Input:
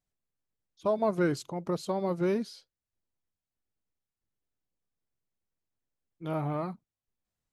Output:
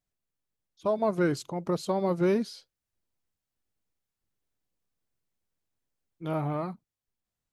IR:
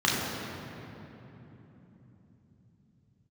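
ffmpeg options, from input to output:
-af "dynaudnorm=f=330:g=9:m=3.5dB"

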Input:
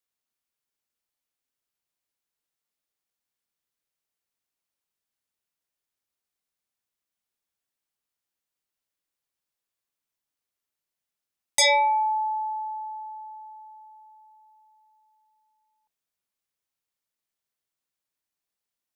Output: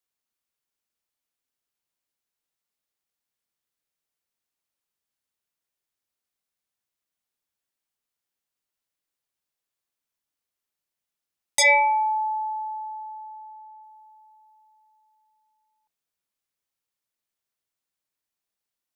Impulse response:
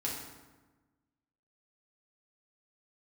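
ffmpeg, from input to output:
-filter_complex "[0:a]asplit=3[a][b][c];[a]afade=t=out:st=11.62:d=0.02[d];[b]highshelf=f=3k:t=q:w=3:g=-9.5,afade=t=in:st=11.62:d=0.02,afade=t=out:st=13.82:d=0.02[e];[c]afade=t=in:st=13.82:d=0.02[f];[d][e][f]amix=inputs=3:normalize=0"

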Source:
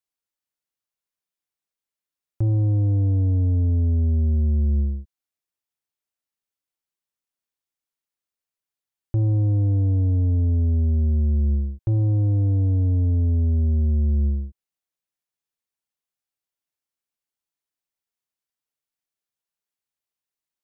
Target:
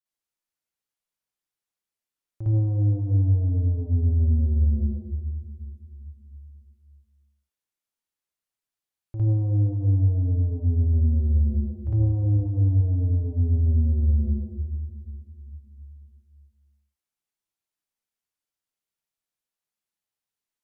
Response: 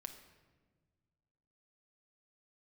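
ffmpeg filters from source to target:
-filter_complex "[0:a]alimiter=limit=-21.5dB:level=0:latency=1,asplit=2[a][b];[1:a]atrim=start_sample=2205,asetrate=26901,aresample=44100,adelay=56[c];[b][c]afir=irnorm=-1:irlink=0,volume=9dB[d];[a][d]amix=inputs=2:normalize=0,volume=-8dB"

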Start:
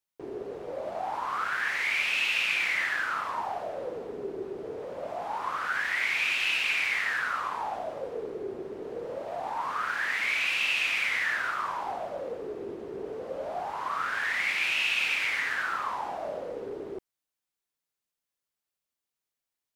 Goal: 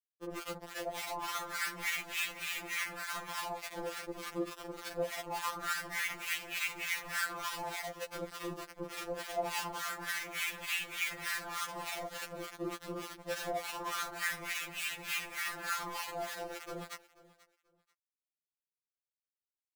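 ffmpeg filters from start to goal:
-filter_complex "[0:a]asettb=1/sr,asplit=3[a][b][c];[a]atrim=end=2.534[d];[b]atrim=start=2.53:end=3.7,asetpts=PTS-STARTPTS,afade=t=in:d=0.004:c=qsin,afade=t=out:st=1.166:d=0.004:c=qsin,highpass=f=560:w=0.5412,highpass=f=560:w=1.3066[e];[c]atrim=start=3.696[f];[d][e]acrossfade=d=0.004:c1=hsin:c2=qsin[g];[g][f]acrossfade=d=0.004:c1=qsin:c2=hsin,afwtdn=0.0112,asettb=1/sr,asplit=3[h][i][j];[h]atrim=end=5.844[k];[i]atrim=start=5.84:end=6.31,asetpts=PTS-STARTPTS,afade=t=in:d=0.004:c=qsin,afade=t=out:st=0.466:d=0.004:c=qsin,equalizer=f=1.4k:w=2.1:g=3[l];[j]atrim=start=6.306[m];[k][l]acrossfade=d=0.004:c1=hsin:c2=qsin[n];[n][m]acrossfade=d=0.004:c1=qsin:c2=hsin,acompressor=threshold=-33dB:ratio=4,flanger=delay=17:depth=5:speed=0.15,adynamicsmooth=sensitivity=7.5:basefreq=1k,acrusher=bits=5:mix=0:aa=0.000001,acrossover=split=1000[o][p];[o]aeval=exprs='val(0)*(1-1/2+1/2*cos(2*PI*3.4*n/s))':c=same[q];[p]aeval=exprs='val(0)*(1-1/2-1/2*cos(2*PI*3.4*n/s))':c=same[r];[q][r]amix=inputs=2:normalize=0,aecho=1:1:486|972:0.1|0.024,afftfilt=real='re*2.83*eq(mod(b,8),0)':imag='im*2.83*eq(mod(b,8),0)':win_size=2048:overlap=0.75,volume=7.5dB"

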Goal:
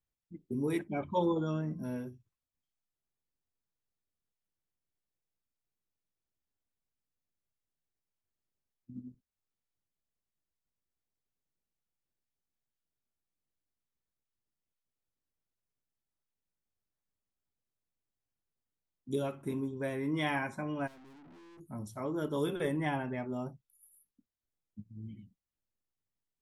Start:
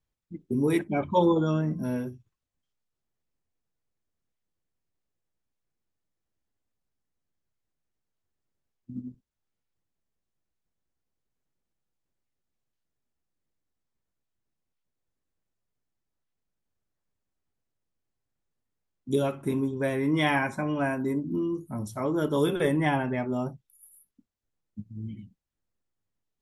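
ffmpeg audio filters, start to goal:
-filter_complex "[0:a]asplit=3[a][b][c];[a]afade=t=out:st=20.86:d=0.02[d];[b]aeval=exprs='(tanh(224*val(0)+0.25)-tanh(0.25))/224':c=same,afade=t=in:st=20.86:d=0.02,afade=t=out:st=21.59:d=0.02[e];[c]afade=t=in:st=21.59:d=0.02[f];[d][e][f]amix=inputs=3:normalize=0,volume=-8dB"

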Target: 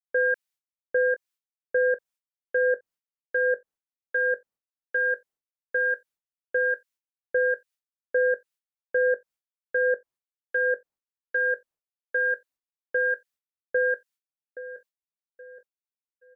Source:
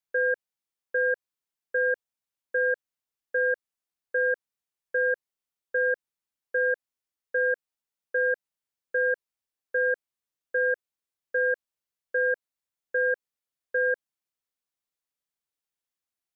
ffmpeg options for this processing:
-filter_complex "[0:a]asplit=2[a][b];[b]aecho=0:1:822|1644|2466|3288:0.178|0.0729|0.0299|0.0123[c];[a][c]amix=inputs=2:normalize=0,agate=range=-33dB:threshold=-52dB:ratio=3:detection=peak,acrossover=split=1300[d][e];[d]aeval=exprs='val(0)*(1-0.7/2+0.7/2*cos(2*PI*1.1*n/s))':c=same[f];[e]aeval=exprs='val(0)*(1-0.7/2-0.7/2*cos(2*PI*1.1*n/s))':c=same[g];[f][g]amix=inputs=2:normalize=0,volume=5.5dB"

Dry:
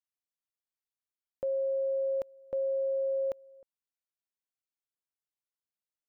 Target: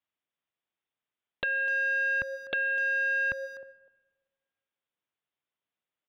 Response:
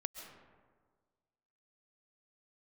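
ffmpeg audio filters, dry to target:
-filter_complex "[0:a]highpass=83,agate=range=-19dB:threshold=-47dB:ratio=16:detection=peak,acompressor=threshold=-49dB:ratio=2.5,aresample=8000,aeval=exprs='0.0251*sin(PI/2*5.62*val(0)/0.0251)':c=same,aresample=44100,asplit=2[a][b];[b]adelay=250,highpass=300,lowpass=3.4k,asoftclip=type=hard:threshold=-37dB,volume=-15dB[c];[a][c]amix=inputs=2:normalize=0,asplit=2[d][e];[1:a]atrim=start_sample=2205,lowshelf=f=110:g=-10[f];[e][f]afir=irnorm=-1:irlink=0,volume=-13dB[g];[d][g]amix=inputs=2:normalize=0,volume=6.5dB"

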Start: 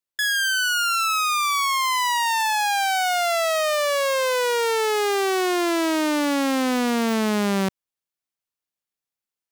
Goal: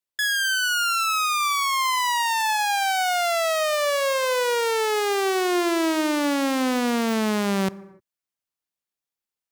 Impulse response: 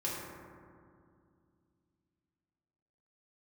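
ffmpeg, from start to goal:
-filter_complex "[0:a]asplit=2[a][b];[1:a]atrim=start_sample=2205,afade=t=out:st=0.36:d=0.01,atrim=end_sample=16317[c];[b][c]afir=irnorm=-1:irlink=0,volume=-21dB[d];[a][d]amix=inputs=2:normalize=0,volume=-1.5dB"

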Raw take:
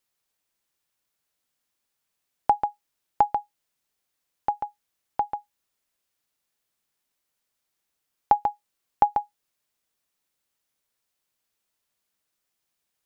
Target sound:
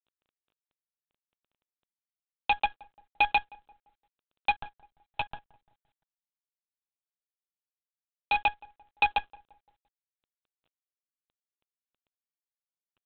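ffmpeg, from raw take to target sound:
-filter_complex "[0:a]highpass=f=260:p=1,aecho=1:1:6.3:0.36,aphaser=in_gain=1:out_gain=1:delay=3.7:decay=0.44:speed=0.3:type=triangular,asoftclip=type=hard:threshold=-21dB,asplit=3[a][b][c];[a]afade=t=out:st=4.5:d=0.02[d];[b]flanger=delay=9.5:depth=1.2:regen=-44:speed=1.8:shape=sinusoidal,afade=t=in:st=4.5:d=0.02,afade=t=out:st=8.39:d=0.02[e];[c]afade=t=in:st=8.39:d=0.02[f];[d][e][f]amix=inputs=3:normalize=0,aexciter=amount=7.9:drive=3.6:freq=2.4k,acrusher=bits=5:dc=4:mix=0:aa=0.000001,asuperstop=centerf=2000:order=8:qfactor=3,asplit=2[g][h];[h]adelay=172,lowpass=f=920:p=1,volume=-20.5dB,asplit=2[i][j];[j]adelay=172,lowpass=f=920:p=1,volume=0.53,asplit=2[k][l];[l]adelay=172,lowpass=f=920:p=1,volume=0.53,asplit=2[m][n];[n]adelay=172,lowpass=f=920:p=1,volume=0.53[o];[g][i][k][m][o]amix=inputs=5:normalize=0" -ar 8000 -c:a adpcm_g726 -b:a 32k

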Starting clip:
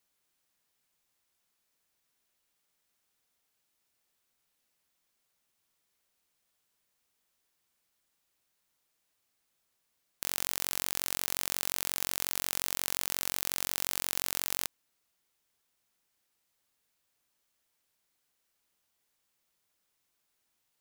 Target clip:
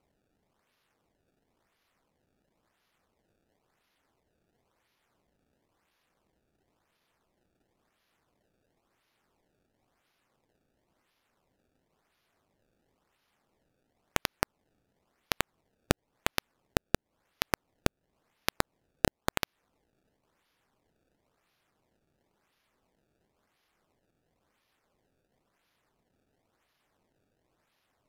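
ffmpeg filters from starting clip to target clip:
-af "acrusher=samples=18:mix=1:aa=0.000001:lfo=1:lforange=28.8:lforate=1.3,acompressor=threshold=-26dB:ratio=5,asetrate=32667,aresample=44100,volume=2.5dB"

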